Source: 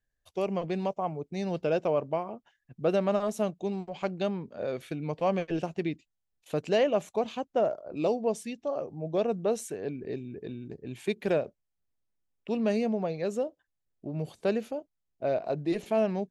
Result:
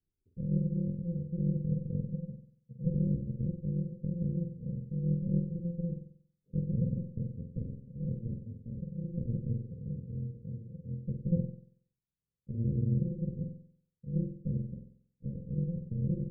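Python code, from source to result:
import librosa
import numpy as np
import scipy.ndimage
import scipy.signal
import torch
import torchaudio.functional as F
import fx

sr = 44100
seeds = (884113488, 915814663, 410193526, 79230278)

y = fx.bit_reversed(x, sr, seeds[0], block=128)
y = fx.peak_eq(y, sr, hz=180.0, db=8.5, octaves=1.8)
y = fx.cheby_harmonics(y, sr, harmonics=(6, 8), levels_db=(-14, -28), full_scale_db=-12.0)
y = scipy.signal.sosfilt(scipy.signal.cheby1(6, 6, 530.0, 'lowpass', fs=sr, output='sos'), y)
y = fx.room_flutter(y, sr, wall_m=8.0, rt60_s=0.56)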